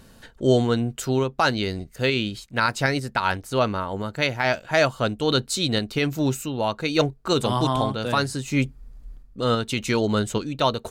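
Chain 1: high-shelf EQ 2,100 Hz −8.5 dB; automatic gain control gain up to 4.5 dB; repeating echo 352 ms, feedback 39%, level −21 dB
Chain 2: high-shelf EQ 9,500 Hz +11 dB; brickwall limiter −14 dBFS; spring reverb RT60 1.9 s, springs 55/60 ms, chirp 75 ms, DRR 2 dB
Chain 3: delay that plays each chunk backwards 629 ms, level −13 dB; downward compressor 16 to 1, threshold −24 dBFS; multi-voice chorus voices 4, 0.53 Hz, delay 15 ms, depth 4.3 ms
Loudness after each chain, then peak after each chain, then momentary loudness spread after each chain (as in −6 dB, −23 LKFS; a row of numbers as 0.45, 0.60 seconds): −21.0, −24.5, −33.0 LKFS; −4.0, −10.0, −15.5 dBFS; 6, 4, 3 LU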